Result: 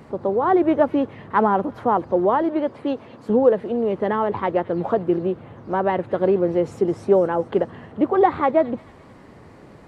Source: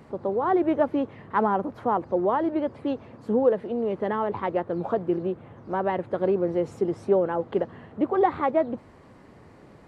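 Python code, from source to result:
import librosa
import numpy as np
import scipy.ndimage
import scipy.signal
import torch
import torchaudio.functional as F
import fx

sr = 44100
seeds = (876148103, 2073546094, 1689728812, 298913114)

p1 = fx.highpass(x, sr, hz=200.0, slope=6, at=(2.42, 3.3))
p2 = p1 + fx.echo_wet_highpass(p1, sr, ms=217, feedback_pct=54, hz=2900.0, wet_db=-12.5, dry=0)
y = F.gain(torch.from_numpy(p2), 5.0).numpy()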